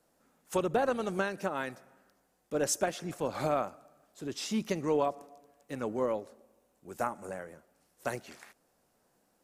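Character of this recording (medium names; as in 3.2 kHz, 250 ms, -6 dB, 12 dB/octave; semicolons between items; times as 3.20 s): noise floor -73 dBFS; spectral tilt -4.0 dB/octave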